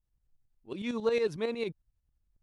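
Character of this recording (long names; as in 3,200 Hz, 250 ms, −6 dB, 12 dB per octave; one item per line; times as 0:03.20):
tremolo saw up 11 Hz, depth 65%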